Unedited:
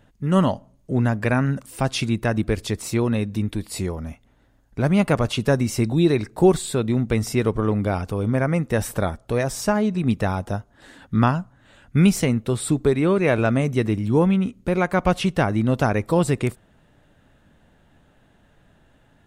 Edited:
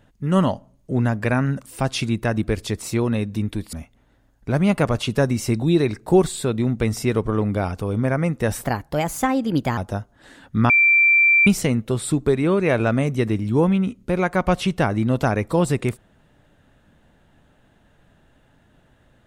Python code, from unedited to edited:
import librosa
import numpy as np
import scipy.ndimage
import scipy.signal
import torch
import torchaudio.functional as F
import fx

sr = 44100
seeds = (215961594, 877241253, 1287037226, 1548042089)

y = fx.edit(x, sr, fx.cut(start_s=3.73, length_s=0.3),
    fx.speed_span(start_s=8.94, length_s=1.42, speed=1.25),
    fx.bleep(start_s=11.28, length_s=0.77, hz=2350.0, db=-11.5), tone=tone)